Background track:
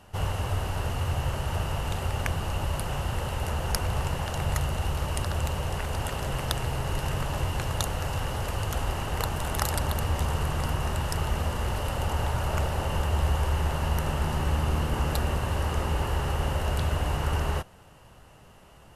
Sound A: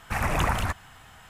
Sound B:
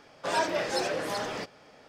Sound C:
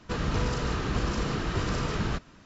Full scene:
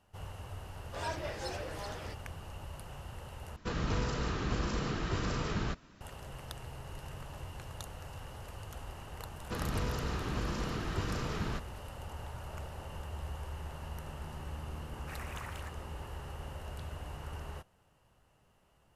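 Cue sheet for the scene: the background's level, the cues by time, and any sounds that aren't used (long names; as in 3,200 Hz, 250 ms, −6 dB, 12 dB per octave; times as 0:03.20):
background track −16 dB
0:00.69: mix in B −11 dB
0:03.56: overwrite with C −5 dB
0:09.41: mix in C −7 dB
0:14.97: mix in A −16.5 dB + high-pass filter 1,100 Hz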